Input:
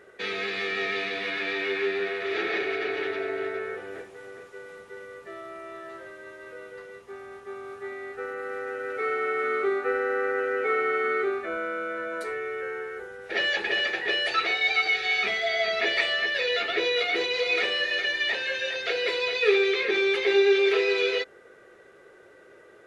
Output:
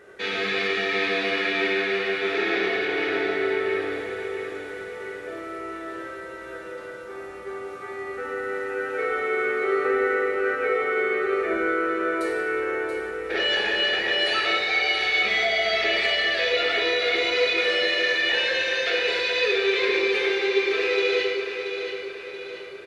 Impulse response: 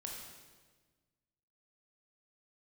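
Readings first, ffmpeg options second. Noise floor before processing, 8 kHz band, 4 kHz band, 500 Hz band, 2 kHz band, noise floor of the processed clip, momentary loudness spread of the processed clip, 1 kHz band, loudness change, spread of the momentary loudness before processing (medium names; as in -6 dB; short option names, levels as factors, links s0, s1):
-53 dBFS, no reading, +4.0 dB, +2.5 dB, +3.0 dB, -38 dBFS, 14 LU, +3.0 dB, +2.5 dB, 20 LU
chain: -filter_complex "[0:a]alimiter=limit=0.0944:level=0:latency=1,aecho=1:1:680|1360|2040|2720|3400:0.398|0.187|0.0879|0.0413|0.0194[s0];[1:a]atrim=start_sample=2205[s1];[s0][s1]afir=irnorm=-1:irlink=0,volume=2.37"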